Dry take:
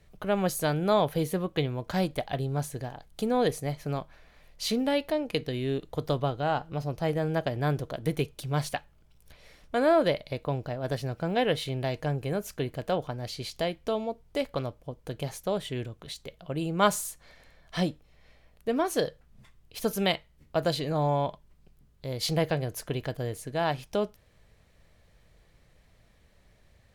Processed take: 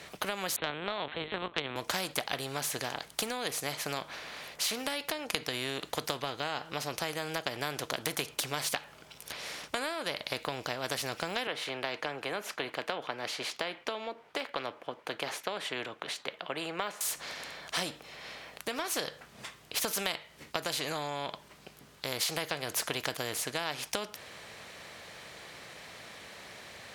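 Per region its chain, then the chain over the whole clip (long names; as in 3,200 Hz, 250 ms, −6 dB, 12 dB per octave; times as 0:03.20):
0:00.56–0:01.76: high-pass filter 90 Hz + linear-prediction vocoder at 8 kHz pitch kept
0:11.47–0:17.01: de-essing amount 80% + three-way crossover with the lows and the highs turned down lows −18 dB, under 260 Hz, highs −17 dB, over 3,000 Hz
whole clip: meter weighting curve A; downward compressor 10 to 1, threshold −34 dBFS; every bin compressed towards the loudest bin 2 to 1; level +8 dB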